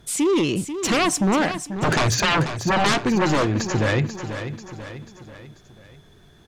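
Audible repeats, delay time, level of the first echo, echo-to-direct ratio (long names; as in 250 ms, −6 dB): 4, 489 ms, −10.0 dB, −9.0 dB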